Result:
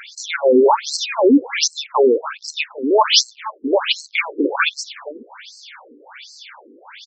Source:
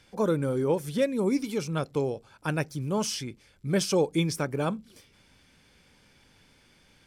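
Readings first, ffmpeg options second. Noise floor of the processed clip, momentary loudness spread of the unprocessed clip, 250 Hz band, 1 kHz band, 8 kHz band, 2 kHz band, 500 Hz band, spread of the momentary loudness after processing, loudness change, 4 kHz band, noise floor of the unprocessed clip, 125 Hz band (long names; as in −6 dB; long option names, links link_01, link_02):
−49 dBFS, 8 LU, +8.5 dB, +16.0 dB, +12.0 dB, +15.0 dB, +11.0 dB, 14 LU, +11.0 dB, +18.0 dB, −61 dBFS, below −25 dB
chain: -filter_complex "[0:a]apsyclip=29.5dB,equalizer=frequency=125:width_type=o:width=1:gain=-9,equalizer=frequency=500:width_type=o:width=1:gain=-5,equalizer=frequency=1000:width_type=o:width=1:gain=8,asplit=2[link_01][link_02];[link_02]aecho=0:1:477:0.15[link_03];[link_01][link_03]amix=inputs=2:normalize=0,afftfilt=real='re*between(b*sr/1024,340*pow(5900/340,0.5+0.5*sin(2*PI*1.3*pts/sr))/1.41,340*pow(5900/340,0.5+0.5*sin(2*PI*1.3*pts/sr))*1.41)':imag='im*between(b*sr/1024,340*pow(5900/340,0.5+0.5*sin(2*PI*1.3*pts/sr))/1.41,340*pow(5900/340,0.5+0.5*sin(2*PI*1.3*pts/sr))*1.41)':win_size=1024:overlap=0.75,volume=-2.5dB"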